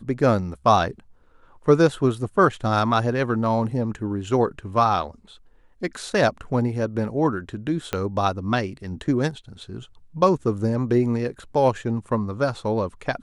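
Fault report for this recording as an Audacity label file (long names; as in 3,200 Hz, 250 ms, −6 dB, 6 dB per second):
7.930000	7.930000	click −10 dBFS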